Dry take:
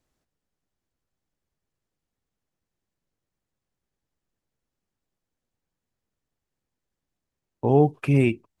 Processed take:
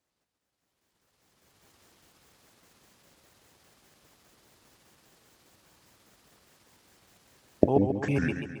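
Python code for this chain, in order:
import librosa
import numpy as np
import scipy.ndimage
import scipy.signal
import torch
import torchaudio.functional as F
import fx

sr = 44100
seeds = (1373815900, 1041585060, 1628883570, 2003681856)

y = fx.pitch_trill(x, sr, semitones=-7.0, every_ms=101)
y = fx.recorder_agc(y, sr, target_db=-15.5, rise_db_per_s=18.0, max_gain_db=30)
y = scipy.signal.sosfilt(scipy.signal.butter(2, 59.0, 'highpass', fs=sr, output='sos'), y)
y = fx.low_shelf(y, sr, hz=280.0, db=-8.5)
y = fx.echo_warbled(y, sr, ms=136, feedback_pct=52, rate_hz=2.8, cents=85, wet_db=-8.0)
y = F.gain(torch.from_numpy(y), -2.5).numpy()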